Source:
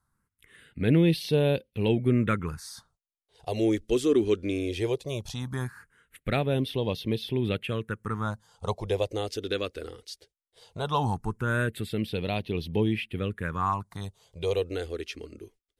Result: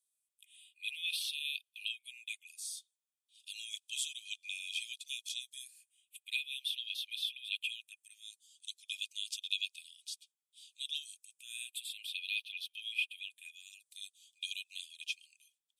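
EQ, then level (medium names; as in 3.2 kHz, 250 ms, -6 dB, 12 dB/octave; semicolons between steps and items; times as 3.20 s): rippled Chebyshev high-pass 2.4 kHz, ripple 9 dB; +5.0 dB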